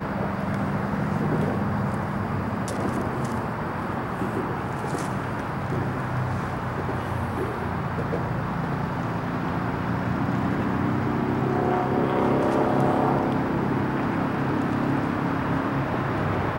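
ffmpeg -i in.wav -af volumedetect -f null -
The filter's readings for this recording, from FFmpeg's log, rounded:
mean_volume: -25.2 dB
max_volume: -10.1 dB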